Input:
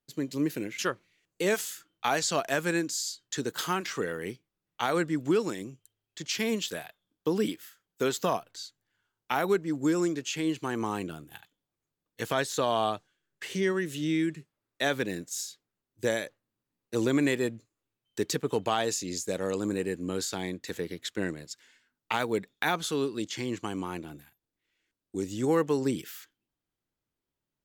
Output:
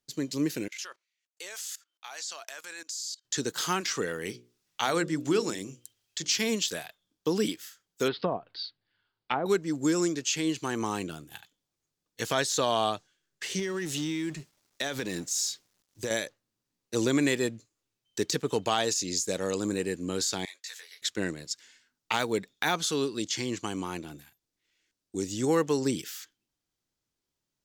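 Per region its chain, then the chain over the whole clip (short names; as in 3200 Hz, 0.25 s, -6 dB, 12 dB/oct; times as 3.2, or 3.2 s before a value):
0.68–3.25 HPF 820 Hz + level quantiser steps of 22 dB
4.25–6.49 notches 60/120/180/240/300/360/420/480/540 Hz + mismatched tape noise reduction encoder only
8.08–9.46 steep low-pass 4800 Hz 72 dB/oct + treble ducked by the level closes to 720 Hz, closed at -24 dBFS
13.59–16.11 G.711 law mismatch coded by mu + compressor 10:1, threshold -28 dBFS
20.45–21.02 Bessel high-pass 1400 Hz, order 4 + detuned doubles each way 26 cents
whole clip: de-esser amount 65%; bell 5700 Hz +9 dB 1.4 oct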